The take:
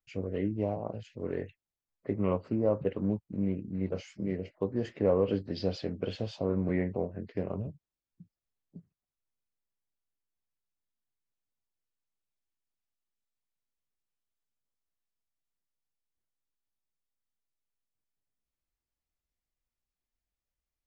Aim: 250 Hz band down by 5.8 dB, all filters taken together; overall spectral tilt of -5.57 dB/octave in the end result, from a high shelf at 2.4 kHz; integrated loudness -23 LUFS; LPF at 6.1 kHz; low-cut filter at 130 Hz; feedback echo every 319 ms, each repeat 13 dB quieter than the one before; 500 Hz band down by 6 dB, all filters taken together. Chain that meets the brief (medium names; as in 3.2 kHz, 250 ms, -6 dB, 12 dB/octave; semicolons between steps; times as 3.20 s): high-pass 130 Hz; low-pass 6.1 kHz; peaking EQ 250 Hz -6 dB; peaking EQ 500 Hz -5.5 dB; treble shelf 2.4 kHz +5 dB; feedback delay 319 ms, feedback 22%, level -13 dB; trim +15.5 dB